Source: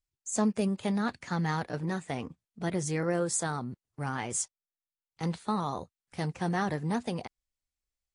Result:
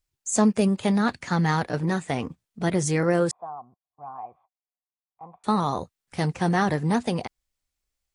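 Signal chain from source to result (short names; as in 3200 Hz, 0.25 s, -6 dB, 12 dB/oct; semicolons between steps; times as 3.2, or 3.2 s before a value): 3.31–5.44 vocal tract filter a; gain +7.5 dB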